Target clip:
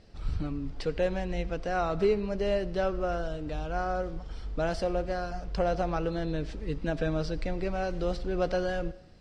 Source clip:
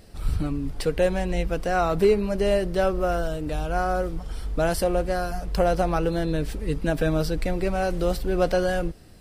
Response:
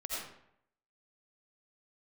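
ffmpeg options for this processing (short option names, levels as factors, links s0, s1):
-filter_complex "[0:a]lowpass=f=6200:w=0.5412,lowpass=f=6200:w=1.3066,asplit=2[s0][s1];[1:a]atrim=start_sample=2205[s2];[s1][s2]afir=irnorm=-1:irlink=0,volume=0.119[s3];[s0][s3]amix=inputs=2:normalize=0,volume=0.447"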